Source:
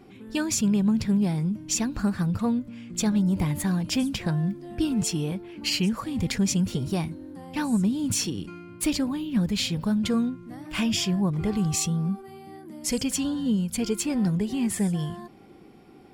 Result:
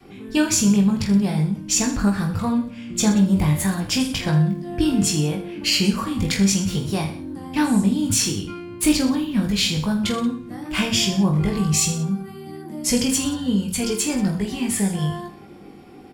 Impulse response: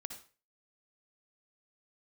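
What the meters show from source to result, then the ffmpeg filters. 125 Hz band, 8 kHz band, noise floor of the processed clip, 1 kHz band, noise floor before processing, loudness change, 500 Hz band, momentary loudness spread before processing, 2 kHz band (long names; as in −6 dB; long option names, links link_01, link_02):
+5.0 dB, +7.5 dB, −41 dBFS, +7.0 dB, −49 dBFS, +5.5 dB, +5.0 dB, 9 LU, +7.5 dB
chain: -filter_complex "[0:a]asplit=2[link_01][link_02];[1:a]atrim=start_sample=2205[link_03];[link_02][link_03]afir=irnorm=-1:irlink=0,volume=-2dB[link_04];[link_01][link_04]amix=inputs=2:normalize=0,adynamicequalizer=threshold=0.0224:dfrequency=270:dqfactor=0.72:tfrequency=270:tqfactor=0.72:attack=5:release=100:ratio=0.375:range=3:mode=cutabove:tftype=bell,asplit=2[link_05][link_06];[link_06]aecho=0:1:20|46|79.8|123.7|180.9:0.631|0.398|0.251|0.158|0.1[link_07];[link_05][link_07]amix=inputs=2:normalize=0,volume=1.5dB"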